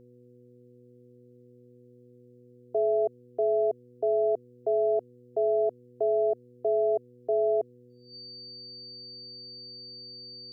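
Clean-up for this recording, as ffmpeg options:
ffmpeg -i in.wav -af "bandreject=frequency=122.7:width_type=h:width=4,bandreject=frequency=245.4:width_type=h:width=4,bandreject=frequency=368.1:width_type=h:width=4,bandreject=frequency=490.8:width_type=h:width=4,bandreject=frequency=4600:width=30" out.wav

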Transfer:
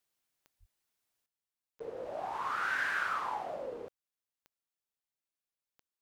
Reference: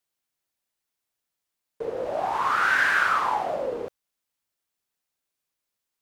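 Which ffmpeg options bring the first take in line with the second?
ffmpeg -i in.wav -filter_complex "[0:a]adeclick=threshold=4,asplit=3[link_01][link_02][link_03];[link_01]afade=type=out:start_time=0.59:duration=0.02[link_04];[link_02]highpass=frequency=140:width=0.5412,highpass=frequency=140:width=1.3066,afade=type=in:start_time=0.59:duration=0.02,afade=type=out:start_time=0.71:duration=0.02[link_05];[link_03]afade=type=in:start_time=0.71:duration=0.02[link_06];[link_04][link_05][link_06]amix=inputs=3:normalize=0,asetnsamples=nb_out_samples=441:pad=0,asendcmd='1.26 volume volume 11.5dB',volume=0dB" out.wav

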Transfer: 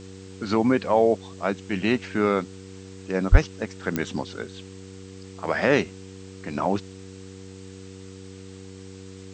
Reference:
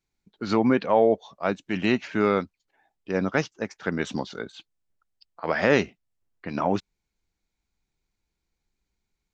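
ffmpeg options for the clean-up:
ffmpeg -i in.wav -filter_complex "[0:a]adeclick=threshold=4,bandreject=frequency=95.1:width_type=h:width=4,bandreject=frequency=190.2:width_type=h:width=4,bandreject=frequency=285.3:width_type=h:width=4,bandreject=frequency=380.4:width_type=h:width=4,bandreject=frequency=475.5:width_type=h:width=4,asplit=3[link_01][link_02][link_03];[link_01]afade=type=out:start_time=3.31:duration=0.02[link_04];[link_02]highpass=frequency=140:width=0.5412,highpass=frequency=140:width=1.3066,afade=type=in:start_time=3.31:duration=0.02,afade=type=out:start_time=3.43:duration=0.02[link_05];[link_03]afade=type=in:start_time=3.43:duration=0.02[link_06];[link_04][link_05][link_06]amix=inputs=3:normalize=0,afwtdn=0.0035" out.wav

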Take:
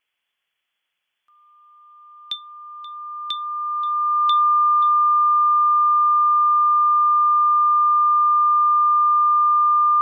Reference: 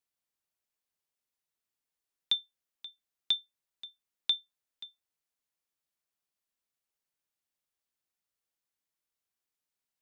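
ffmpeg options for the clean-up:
ffmpeg -i in.wav -af "bandreject=frequency=1200:width=30,agate=range=-21dB:threshold=-70dB" out.wav

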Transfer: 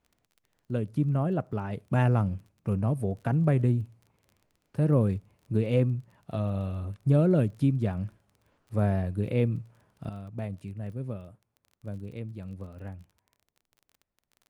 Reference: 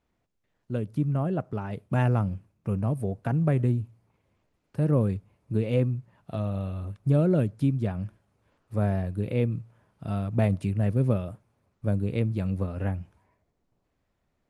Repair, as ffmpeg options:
ffmpeg -i in.wav -af "adeclick=threshold=4,asetnsamples=nb_out_samples=441:pad=0,asendcmd='10.09 volume volume 11.5dB',volume=0dB" out.wav

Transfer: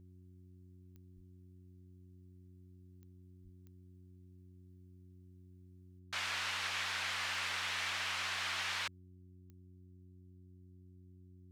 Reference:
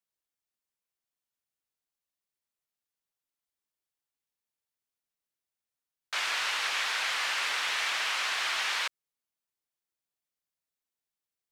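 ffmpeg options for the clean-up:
ffmpeg -i in.wav -filter_complex "[0:a]adeclick=threshold=4,bandreject=frequency=91.4:width_type=h:width=4,bandreject=frequency=182.8:width_type=h:width=4,bandreject=frequency=274.2:width_type=h:width=4,bandreject=frequency=365.6:width_type=h:width=4,asplit=3[link_01][link_02][link_03];[link_01]afade=type=out:start_time=1.15:duration=0.02[link_04];[link_02]highpass=frequency=140:width=0.5412,highpass=frequency=140:width=1.3066,afade=type=in:start_time=1.15:duration=0.02,afade=type=out:start_time=1.27:duration=0.02[link_05];[link_03]afade=type=in:start_time=1.27:duration=0.02[link_06];[link_04][link_05][link_06]amix=inputs=3:normalize=0,asplit=3[link_07][link_08][link_09];[link_07]afade=type=out:start_time=3.43:duration=0.02[link_10];[link_08]highpass=frequency=140:width=0.5412,highpass=frequency=140:width=1.3066,afade=type=in:start_time=3.43:duration=0.02,afade=type=out:start_time=3.55:duration=0.02[link_11];[link_09]afade=type=in:start_time=3.55:duration=0.02[link_12];[link_10][link_11][link_12]amix=inputs=3:normalize=0,asetnsamples=nb_out_samples=441:pad=0,asendcmd='5.99 volume volume 7.5dB',volume=0dB" out.wav

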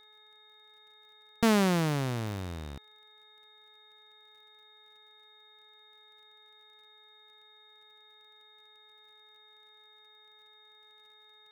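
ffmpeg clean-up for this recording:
ffmpeg -i in.wav -af "adeclick=threshold=4,bandreject=frequency=426.8:width_type=h:width=4,bandreject=frequency=853.6:width_type=h:width=4,bandreject=frequency=1280.4:width_type=h:width=4,bandreject=frequency=1707.2:width_type=h:width=4,bandreject=frequency=2134:width_type=h:width=4,bandreject=frequency=3700:width=30" out.wav

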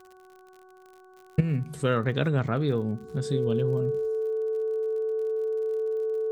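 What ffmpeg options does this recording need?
ffmpeg -i in.wav -af "adeclick=threshold=4,bandreject=frequency=372:width_type=h:width=4,bandreject=frequency=744:width_type=h:width=4,bandreject=frequency=1116:width_type=h:width=4,bandreject=frequency=1488:width_type=h:width=4,bandreject=frequency=440:width=30" out.wav

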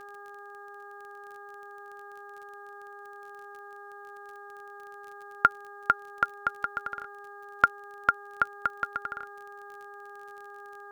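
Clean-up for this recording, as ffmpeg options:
ffmpeg -i in.wav -af "adeclick=threshold=4,bandreject=frequency=406.3:width_type=h:width=4,bandreject=frequency=812.6:width_type=h:width=4,bandreject=frequency=1218.9:width_type=h:width=4,bandreject=frequency=1625.2:width_type=h:width=4" out.wav

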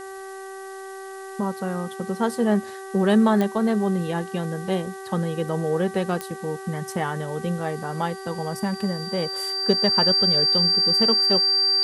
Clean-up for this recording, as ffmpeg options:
ffmpeg -i in.wav -af "adeclick=threshold=4,bandreject=frequency=385.4:width_type=h:width=4,bandreject=frequency=770.8:width_type=h:width=4,bandreject=frequency=1156.2:width_type=h:width=4,bandreject=frequency=1541.6:width_type=h:width=4,bandreject=frequency=1927:width_type=h:width=4,bandreject=frequency=4700:width=30,afftdn=noise_reduction=30:noise_floor=-37" out.wav

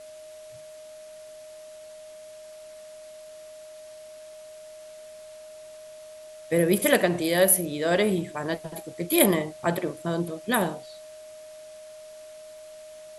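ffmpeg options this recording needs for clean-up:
ffmpeg -i in.wav -af "adeclick=threshold=4,bandreject=frequency=620:width=30,afftdn=noise_reduction=26:noise_floor=-45" out.wav

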